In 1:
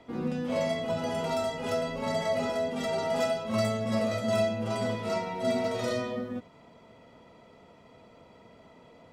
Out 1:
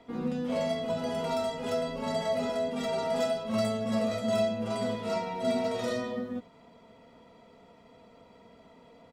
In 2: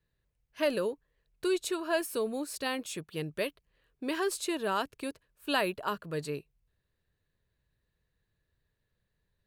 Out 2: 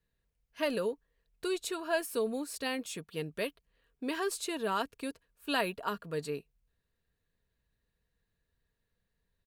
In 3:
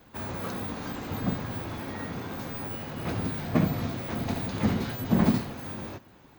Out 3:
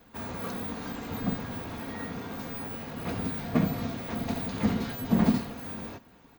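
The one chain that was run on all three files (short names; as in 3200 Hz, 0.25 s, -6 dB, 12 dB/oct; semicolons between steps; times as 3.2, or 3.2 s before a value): comb 4.3 ms, depth 34%; gain -2 dB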